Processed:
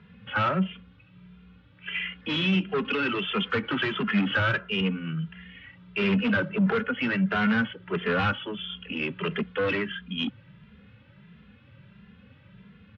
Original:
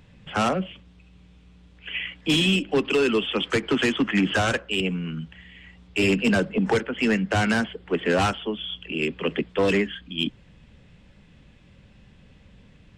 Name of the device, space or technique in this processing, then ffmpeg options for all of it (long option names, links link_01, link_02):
barber-pole flanger into a guitar amplifier: -filter_complex "[0:a]asplit=2[link_01][link_02];[link_02]adelay=2.5,afreqshift=1.5[link_03];[link_01][link_03]amix=inputs=2:normalize=1,asoftclip=type=tanh:threshold=-24dB,highpass=92,equalizer=frequency=110:width_type=q:width=4:gain=5,equalizer=frequency=190:width_type=q:width=4:gain=5,equalizer=frequency=320:width_type=q:width=4:gain=-7,equalizer=frequency=710:width_type=q:width=4:gain=-7,equalizer=frequency=1400:width_type=q:width=4:gain=8,lowpass=frequency=3500:width=0.5412,lowpass=frequency=3500:width=1.3066,volume=3dB"